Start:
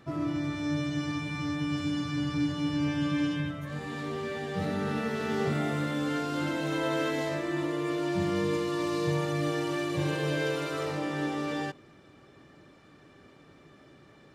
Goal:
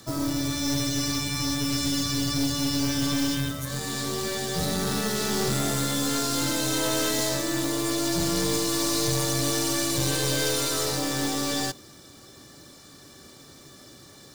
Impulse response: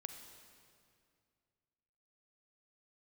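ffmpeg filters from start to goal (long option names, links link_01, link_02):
-filter_complex "[0:a]afreqshift=-14,asplit=2[link_01][link_02];[link_02]acrusher=bits=5:mode=log:mix=0:aa=0.000001,volume=-6dB[link_03];[link_01][link_03]amix=inputs=2:normalize=0,aexciter=amount=3.5:drive=9.7:freq=3800,aeval=exprs='(tanh(14.1*val(0)+0.45)-tanh(0.45))/14.1':channel_layout=same,volume=2.5dB"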